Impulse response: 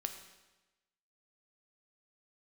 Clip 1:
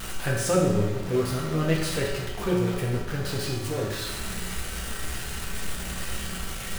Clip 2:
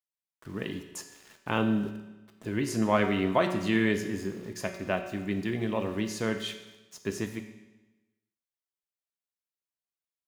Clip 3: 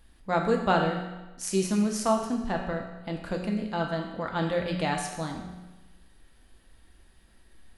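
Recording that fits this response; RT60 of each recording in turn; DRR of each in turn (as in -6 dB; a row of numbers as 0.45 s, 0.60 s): 2; 1.1 s, 1.1 s, 1.1 s; -3.5 dB, 5.5 dB, 1.5 dB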